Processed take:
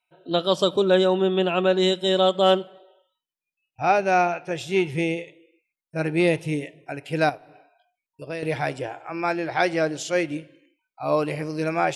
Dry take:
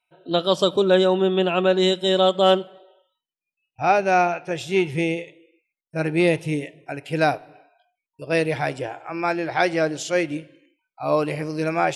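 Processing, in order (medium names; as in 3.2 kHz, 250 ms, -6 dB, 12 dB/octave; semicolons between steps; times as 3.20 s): 7.29–8.43 s: compression 3:1, threshold -31 dBFS, peak gain reduction 11 dB; trim -1.5 dB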